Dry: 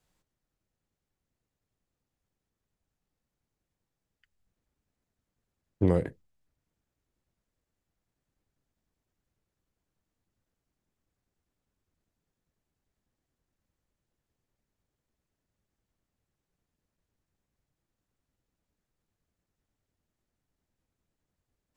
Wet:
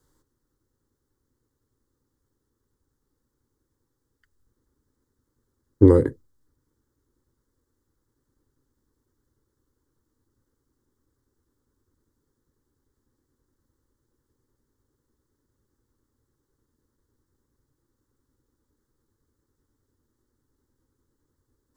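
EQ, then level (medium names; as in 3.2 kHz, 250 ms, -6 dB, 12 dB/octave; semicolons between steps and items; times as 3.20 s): peaking EQ 190 Hz +13 dB 1.7 oct; static phaser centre 680 Hz, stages 6; +8.0 dB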